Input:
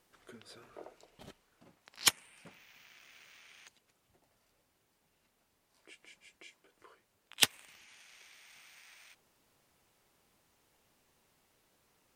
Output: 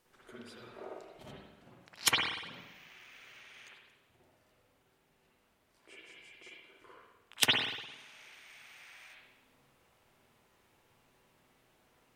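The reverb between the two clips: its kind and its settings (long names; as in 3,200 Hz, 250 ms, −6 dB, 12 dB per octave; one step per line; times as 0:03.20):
spring reverb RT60 1 s, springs 50/58 ms, chirp 45 ms, DRR −6 dB
level −2 dB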